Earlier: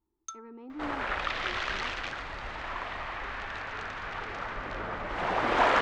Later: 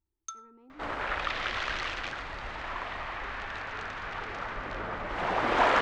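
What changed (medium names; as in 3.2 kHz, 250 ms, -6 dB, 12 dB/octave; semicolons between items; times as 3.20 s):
speech -11.0 dB; first sound: send on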